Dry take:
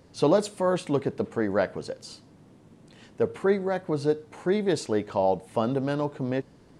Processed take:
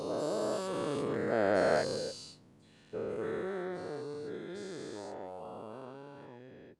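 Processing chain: every event in the spectrogram widened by 480 ms; Doppler pass-by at 1.88 s, 12 m/s, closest 5.2 m; trim -8.5 dB

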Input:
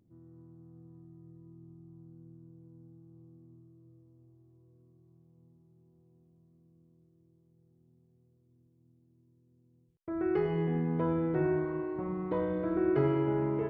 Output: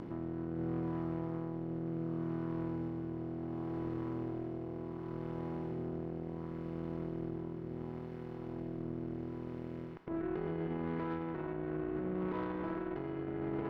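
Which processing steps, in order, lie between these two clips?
spectral levelling over time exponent 0.4; ten-band graphic EQ 125 Hz -6 dB, 250 Hz +4 dB, 500 Hz -7 dB, 1 kHz +3 dB; compression 6:1, threshold -36 dBFS, peak gain reduction 12.5 dB; peak limiter -32.5 dBFS, peak gain reduction 7 dB; rotary cabinet horn 0.7 Hz; Chebyshev shaper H 4 -18 dB, 7 -27 dB, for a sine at -31.5 dBFS; trim +4 dB

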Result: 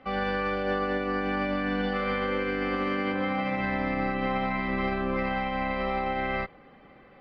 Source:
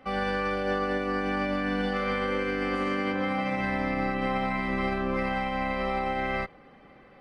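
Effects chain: low-pass 4.6 kHz 24 dB/octave

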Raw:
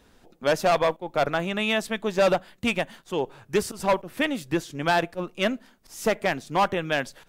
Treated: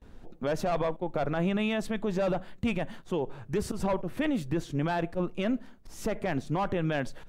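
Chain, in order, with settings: band-stop 5 kHz, Q 30; gate with hold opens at -50 dBFS; tilt EQ -2.5 dB/octave; peak limiter -20.5 dBFS, peak gain reduction 12 dB

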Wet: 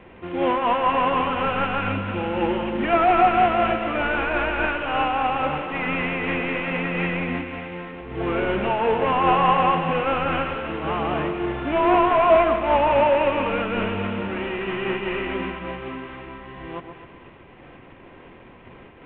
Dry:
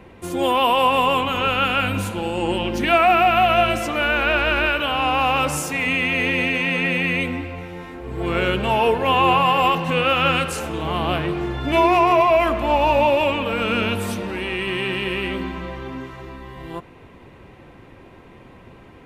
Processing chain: CVSD coder 16 kbps; peaking EQ 80 Hz -4.5 dB 2.4 oct; on a send: two-band feedback delay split 1.2 kHz, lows 131 ms, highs 249 ms, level -8.5 dB; on the sum: random flutter of the level, depth 50%; trim +2 dB

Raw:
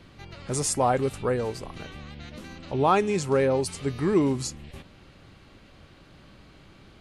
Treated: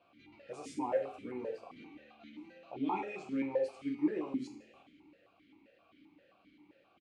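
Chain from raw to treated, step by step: doubling 13 ms -10.5 dB; two-slope reverb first 0.49 s, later 2.2 s, from -25 dB, DRR 0.5 dB; stepped vowel filter 7.6 Hz; trim -3.5 dB

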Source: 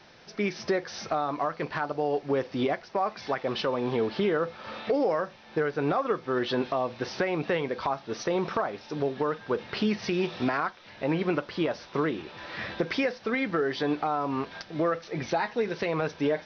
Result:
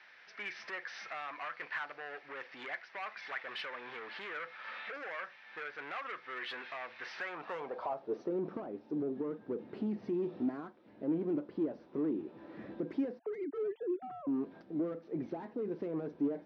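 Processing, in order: 13.19–14.27 s: formants replaced by sine waves; saturation -28 dBFS, distortion -9 dB; band-pass sweep 1.9 kHz -> 290 Hz, 7.14–8.34 s; trim +2.5 dB

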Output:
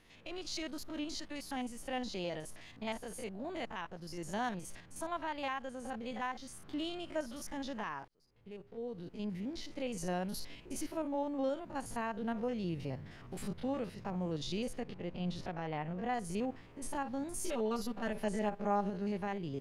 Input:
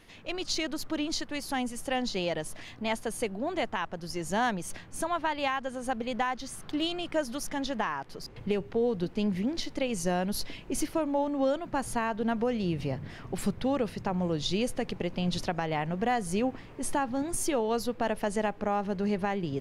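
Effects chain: spectrogram pixelated in time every 50 ms; 8.08–9.80 s: fade in; 14.80–16.14 s: low-pass 3.4 kHz 6 dB/octave; 17.44–18.90 s: comb 5.1 ms, depth 83%; trim -7 dB

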